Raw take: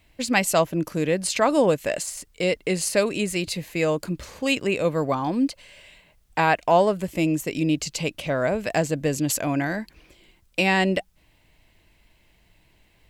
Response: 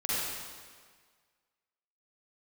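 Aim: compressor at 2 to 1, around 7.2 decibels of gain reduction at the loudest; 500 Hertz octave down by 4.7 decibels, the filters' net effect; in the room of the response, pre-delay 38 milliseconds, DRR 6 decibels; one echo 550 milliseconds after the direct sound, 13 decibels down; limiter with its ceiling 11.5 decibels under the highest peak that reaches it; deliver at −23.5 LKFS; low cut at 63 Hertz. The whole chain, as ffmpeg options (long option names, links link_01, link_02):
-filter_complex "[0:a]highpass=63,equalizer=frequency=500:width_type=o:gain=-6,acompressor=threshold=-30dB:ratio=2,alimiter=level_in=1dB:limit=-24dB:level=0:latency=1,volume=-1dB,aecho=1:1:550:0.224,asplit=2[link_01][link_02];[1:a]atrim=start_sample=2205,adelay=38[link_03];[link_02][link_03]afir=irnorm=-1:irlink=0,volume=-14.5dB[link_04];[link_01][link_04]amix=inputs=2:normalize=0,volume=10dB"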